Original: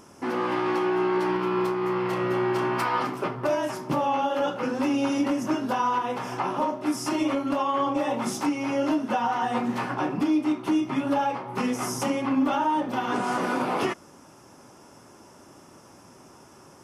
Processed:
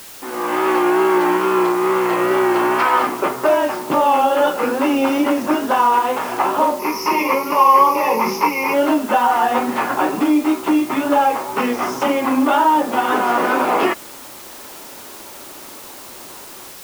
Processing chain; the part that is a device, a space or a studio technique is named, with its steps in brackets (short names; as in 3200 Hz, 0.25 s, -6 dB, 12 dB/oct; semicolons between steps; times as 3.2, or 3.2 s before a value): dictaphone (BPF 320–3200 Hz; AGC gain up to 12.5 dB; wow and flutter; white noise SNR 20 dB); 6.79–8.74 ripple EQ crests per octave 0.83, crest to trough 15 dB; gain -1 dB